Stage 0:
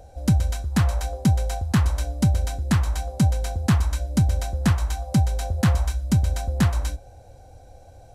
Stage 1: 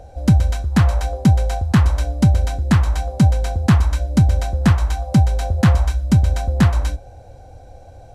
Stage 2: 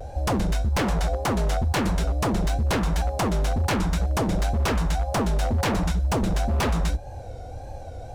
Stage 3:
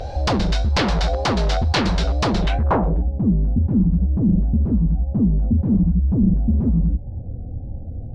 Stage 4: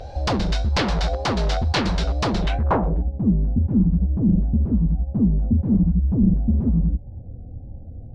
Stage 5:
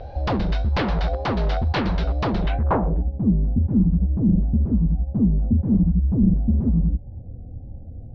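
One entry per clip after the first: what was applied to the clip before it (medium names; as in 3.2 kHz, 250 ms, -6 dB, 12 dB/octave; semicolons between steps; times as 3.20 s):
treble shelf 5.7 kHz -9.5 dB; trim +6 dB
wavefolder -17.5 dBFS; in parallel at +3 dB: compression, threshold -31 dBFS, peak gain reduction 10.5 dB; on the sum: wow and flutter 88 cents; trim -3.5 dB
in parallel at +2 dB: peak limiter -24.5 dBFS, peak gain reduction 8 dB; on the sum: low-pass sweep 4.5 kHz -> 220 Hz, 2.40–3.08 s; upward compressor, threshold -39 dBFS
upward expansion 1.5:1, over -26 dBFS
distance through air 250 m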